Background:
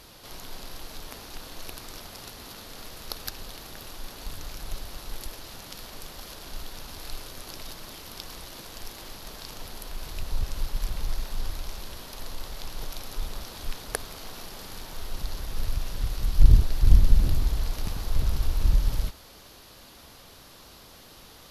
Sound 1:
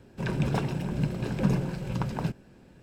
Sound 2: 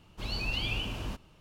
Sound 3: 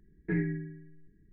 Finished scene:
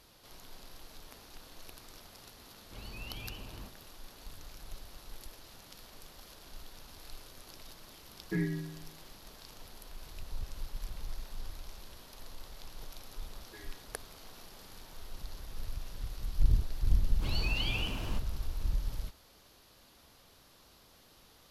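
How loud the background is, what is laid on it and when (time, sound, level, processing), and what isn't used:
background -11 dB
2.53 add 2 -10.5 dB + Bessel low-pass 2700 Hz
8.03 add 3 -2.5 dB
13.24 add 3 -14.5 dB + HPF 440 Hz 24 dB/oct
17.03 add 2 -1.5 dB
not used: 1

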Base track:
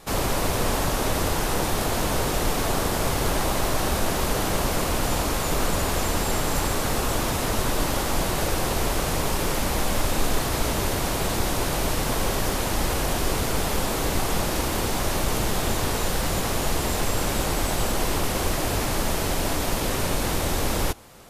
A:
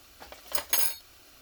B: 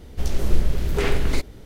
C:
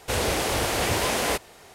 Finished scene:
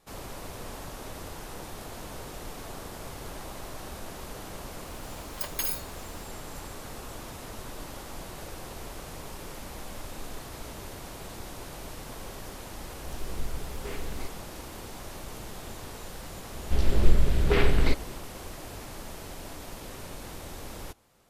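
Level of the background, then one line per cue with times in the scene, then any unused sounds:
base track -16.5 dB
4.86 add A -6 dB
12.87 add B -16 dB
16.53 add B -0.5 dB + LPF 4800 Hz 24 dB/oct
not used: C

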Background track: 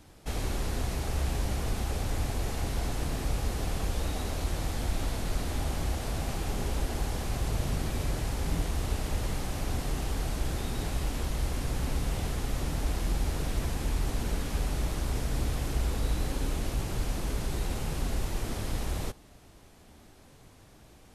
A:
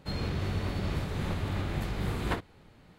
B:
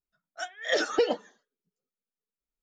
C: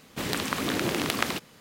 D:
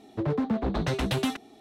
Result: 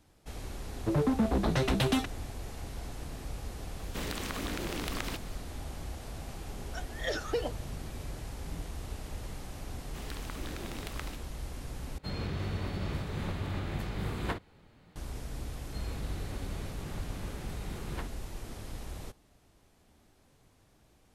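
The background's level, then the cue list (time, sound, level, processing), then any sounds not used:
background track -9.5 dB
0.69 add D -0.5 dB
3.78 add C -1.5 dB + compressor 3:1, threshold -34 dBFS
6.35 add B -8 dB
9.77 add C -16 dB
11.98 replace with A -3 dB
15.67 add A -10 dB

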